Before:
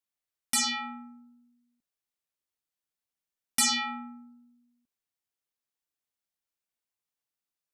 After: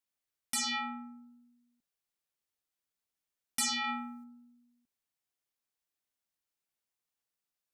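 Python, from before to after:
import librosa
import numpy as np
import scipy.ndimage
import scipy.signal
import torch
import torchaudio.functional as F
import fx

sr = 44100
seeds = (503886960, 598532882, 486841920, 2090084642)

p1 = fx.high_shelf(x, sr, hz=2500.0, db=9.5, at=(3.84, 4.24))
p2 = fx.over_compress(p1, sr, threshold_db=-33.0, ratio=-0.5)
p3 = p1 + (p2 * 10.0 ** (-2.0 / 20.0))
y = p3 * 10.0 ** (-7.5 / 20.0)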